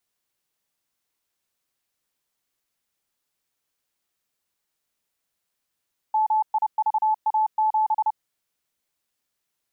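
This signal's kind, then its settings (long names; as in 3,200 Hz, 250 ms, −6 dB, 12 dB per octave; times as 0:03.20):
Morse code "MIVA7" 30 words per minute 866 Hz −17.5 dBFS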